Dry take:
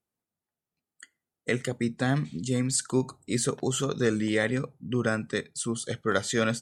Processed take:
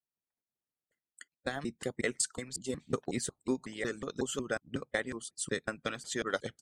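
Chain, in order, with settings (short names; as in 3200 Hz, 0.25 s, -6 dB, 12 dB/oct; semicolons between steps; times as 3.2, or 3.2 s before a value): slices in reverse order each 0.183 s, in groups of 4; transient shaper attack +4 dB, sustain -3 dB; harmonic-percussive split harmonic -17 dB; gain -6 dB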